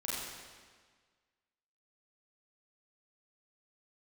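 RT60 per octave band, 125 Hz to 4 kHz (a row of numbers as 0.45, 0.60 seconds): 1.6, 1.6, 1.6, 1.6, 1.5, 1.4 seconds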